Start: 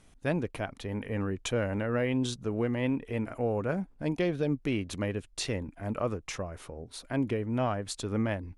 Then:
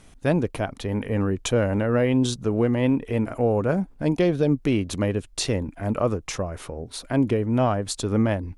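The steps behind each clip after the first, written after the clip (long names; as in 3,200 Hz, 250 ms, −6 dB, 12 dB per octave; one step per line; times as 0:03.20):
dynamic equaliser 2,100 Hz, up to −5 dB, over −48 dBFS, Q 1
level +8.5 dB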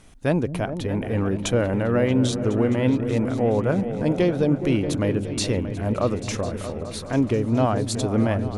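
echo whose low-pass opens from repeat to repeat 210 ms, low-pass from 200 Hz, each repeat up 2 octaves, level −6 dB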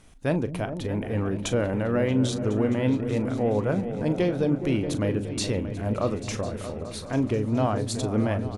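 double-tracking delay 38 ms −13 dB
level −3.5 dB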